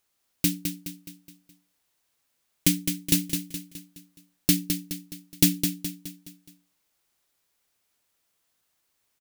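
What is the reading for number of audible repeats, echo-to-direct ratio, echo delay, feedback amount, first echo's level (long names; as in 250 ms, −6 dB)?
5, −6.0 dB, 210 ms, 46%, −7.0 dB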